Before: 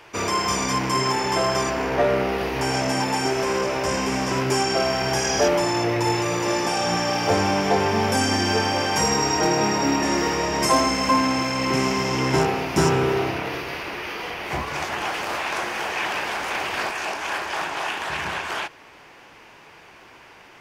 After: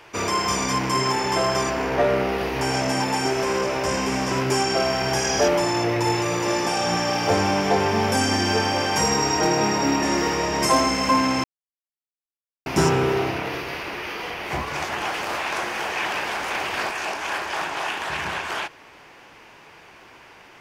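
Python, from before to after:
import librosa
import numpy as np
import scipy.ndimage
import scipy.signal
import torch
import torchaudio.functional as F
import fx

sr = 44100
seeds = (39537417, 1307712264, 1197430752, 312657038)

y = fx.edit(x, sr, fx.silence(start_s=11.44, length_s=1.22), tone=tone)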